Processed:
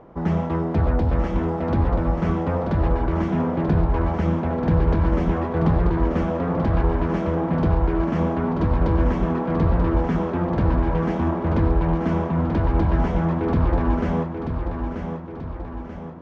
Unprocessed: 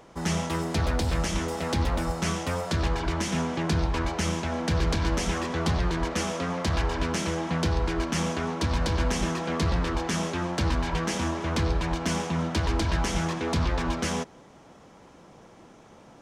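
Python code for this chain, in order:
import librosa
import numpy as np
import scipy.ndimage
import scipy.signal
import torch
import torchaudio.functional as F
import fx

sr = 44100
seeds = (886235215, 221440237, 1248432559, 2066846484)

y = scipy.signal.sosfilt(scipy.signal.bessel(2, 870.0, 'lowpass', norm='mag', fs=sr, output='sos'), x)
y = fx.echo_feedback(y, sr, ms=935, feedback_pct=51, wet_db=-7)
y = F.gain(torch.from_numpy(y), 6.5).numpy()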